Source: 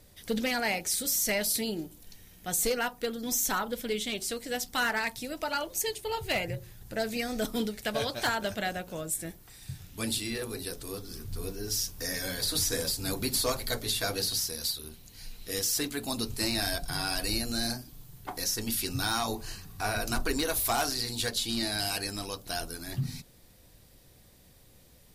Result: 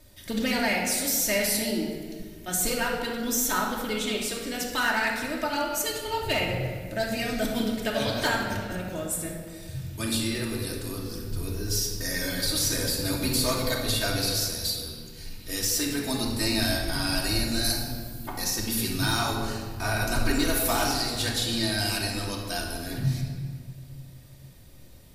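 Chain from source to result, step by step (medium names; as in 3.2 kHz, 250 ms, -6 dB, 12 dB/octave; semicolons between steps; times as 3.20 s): 8.36–8.80 s: compressor with a negative ratio -38 dBFS, ratio -0.5; 17.64–18.28 s: treble shelf 6.3 kHz +11 dB; reverberation RT60 1.8 s, pre-delay 3 ms, DRR -2 dB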